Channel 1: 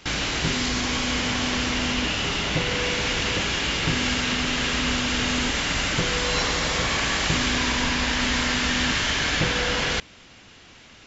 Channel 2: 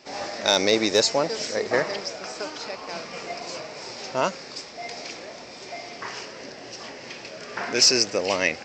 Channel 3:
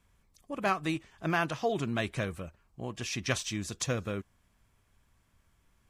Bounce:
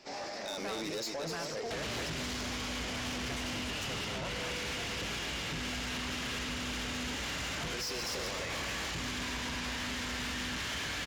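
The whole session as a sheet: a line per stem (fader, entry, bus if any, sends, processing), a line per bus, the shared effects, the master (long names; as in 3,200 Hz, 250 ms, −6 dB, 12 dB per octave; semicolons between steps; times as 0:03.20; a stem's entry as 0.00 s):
−3.0 dB, 1.65 s, bus A, no send, no echo send, sub-octave generator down 2 octaves, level −4 dB
−5.0 dB, 0.00 s, bus A, no send, echo send −10 dB, no processing
−5.0 dB, 0.00 s, no bus, no send, no echo send, no processing
bus A: 0.0 dB, high-pass filter 52 Hz 24 dB per octave; brickwall limiter −19.5 dBFS, peak gain reduction 10 dB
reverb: not used
echo: single-tap delay 248 ms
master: soft clipping −30 dBFS, distortion −10 dB; brickwall limiter −33.5 dBFS, peak gain reduction 3.5 dB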